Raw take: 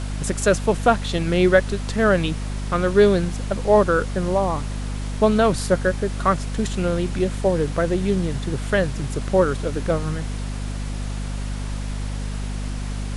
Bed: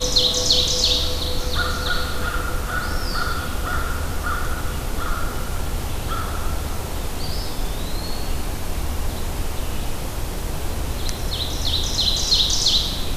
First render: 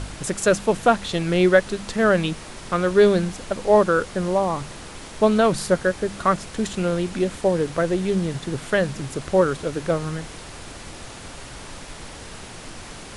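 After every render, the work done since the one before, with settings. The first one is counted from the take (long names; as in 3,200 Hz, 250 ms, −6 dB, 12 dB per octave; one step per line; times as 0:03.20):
hum removal 50 Hz, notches 5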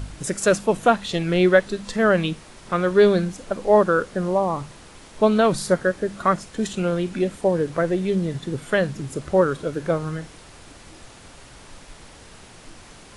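noise reduction from a noise print 7 dB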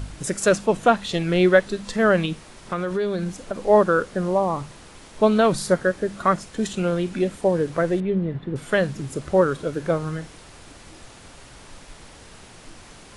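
0:00.49–0:00.96: low-pass filter 9,000 Hz
0:02.25–0:03.67: downward compressor, threshold −21 dBFS
0:08.00–0:08.56: high-frequency loss of the air 470 metres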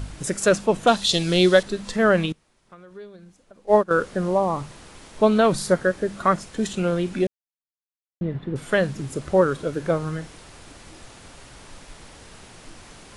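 0:00.87–0:01.63: high shelf with overshoot 2,900 Hz +10 dB, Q 1.5
0:02.32–0:03.91: expander for the loud parts 2.5 to 1, over −25 dBFS
0:07.27–0:08.21: silence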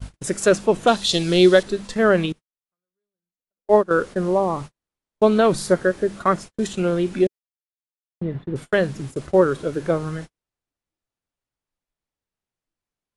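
dynamic equaliser 370 Hz, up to +5 dB, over −32 dBFS, Q 2.6
noise gate −32 dBFS, range −46 dB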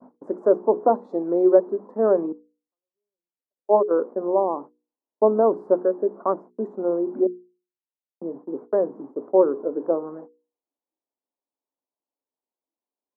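elliptic band-pass filter 250–1,000 Hz, stop band 50 dB
mains-hum notches 60/120/180/240/300/360/420/480 Hz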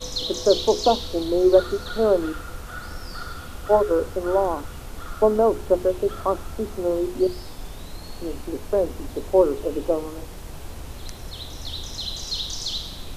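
mix in bed −11 dB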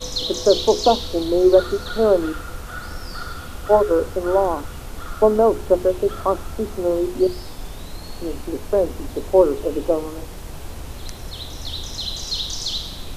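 level +3 dB
brickwall limiter −2 dBFS, peak gain reduction 1.5 dB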